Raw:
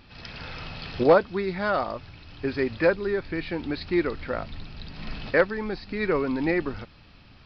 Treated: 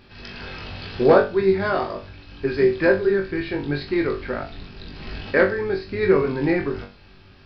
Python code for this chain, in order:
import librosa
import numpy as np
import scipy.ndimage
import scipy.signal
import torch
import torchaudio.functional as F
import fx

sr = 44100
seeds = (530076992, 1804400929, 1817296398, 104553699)

p1 = fx.octave_divider(x, sr, octaves=1, level_db=-5.0)
p2 = fx.small_body(p1, sr, hz=(390.0, 1600.0), ring_ms=70, db=10)
y = p2 + fx.room_flutter(p2, sr, wall_m=3.6, rt60_s=0.3, dry=0)